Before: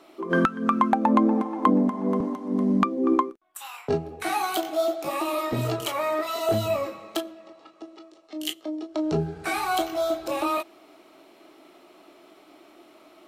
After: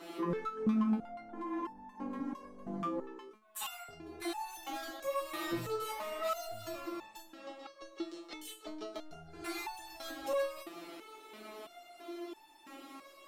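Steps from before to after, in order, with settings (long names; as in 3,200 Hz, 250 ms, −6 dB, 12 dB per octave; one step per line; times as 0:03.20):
parametric band 640 Hz −5 dB 0.32 octaves
downward compressor 6 to 1, threshold −32 dBFS, peak gain reduction 16.5 dB
brickwall limiter −29.5 dBFS, peak gain reduction 12 dB
soft clipping −36 dBFS, distortion −14 dB
step-sequenced resonator 3 Hz 170–890 Hz
level +18 dB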